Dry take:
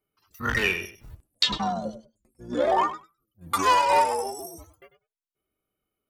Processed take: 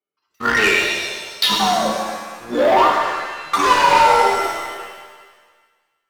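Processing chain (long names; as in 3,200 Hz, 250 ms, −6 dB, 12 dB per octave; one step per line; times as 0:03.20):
three-way crossover with the lows and the highs turned down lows −18 dB, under 240 Hz, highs −14 dB, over 5,800 Hz
leveller curve on the samples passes 3
reverb with rising layers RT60 1.5 s, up +7 semitones, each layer −8 dB, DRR 0.5 dB
level −1 dB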